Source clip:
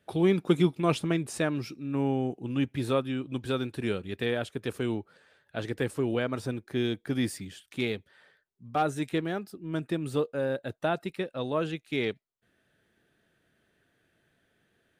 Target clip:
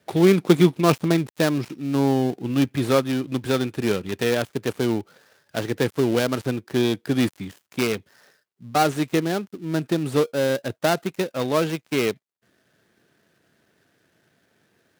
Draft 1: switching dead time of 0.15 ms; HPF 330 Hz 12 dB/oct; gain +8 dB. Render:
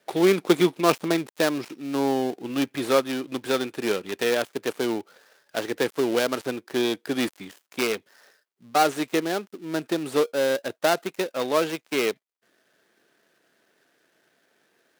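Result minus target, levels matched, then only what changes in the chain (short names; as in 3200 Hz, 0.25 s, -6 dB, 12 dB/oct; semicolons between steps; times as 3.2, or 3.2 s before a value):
125 Hz band -10.0 dB
change: HPF 100 Hz 12 dB/oct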